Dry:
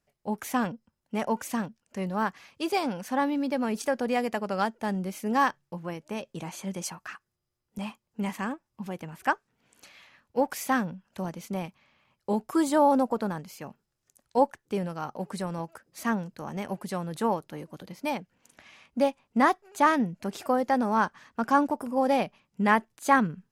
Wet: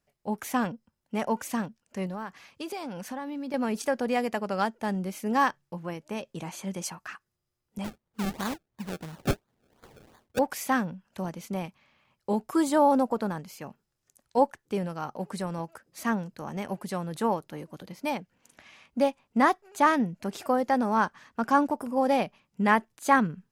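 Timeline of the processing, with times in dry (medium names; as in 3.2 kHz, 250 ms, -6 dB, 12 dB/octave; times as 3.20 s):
2.06–3.54 s: compression, threshold -32 dBFS
7.84–10.39 s: decimation with a swept rate 31× 2.9 Hz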